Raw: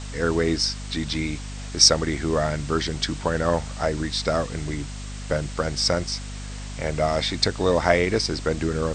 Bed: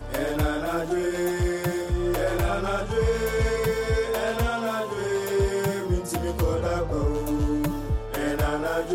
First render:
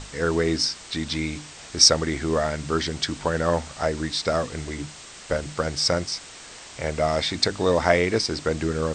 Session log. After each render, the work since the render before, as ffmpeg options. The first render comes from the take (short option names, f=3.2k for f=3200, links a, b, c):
-af "bandreject=f=50:t=h:w=6,bandreject=f=100:t=h:w=6,bandreject=f=150:t=h:w=6,bandreject=f=200:t=h:w=6,bandreject=f=250:t=h:w=6,bandreject=f=300:t=h:w=6"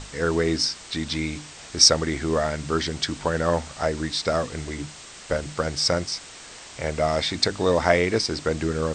-af anull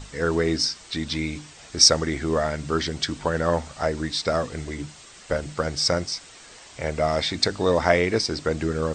-af "afftdn=nr=6:nf=-43"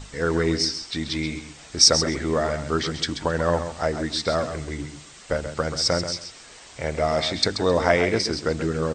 -af "aecho=1:1:133|266:0.335|0.0569"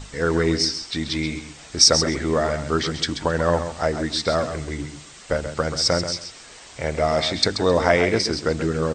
-af "volume=2dB,alimiter=limit=-2dB:level=0:latency=1"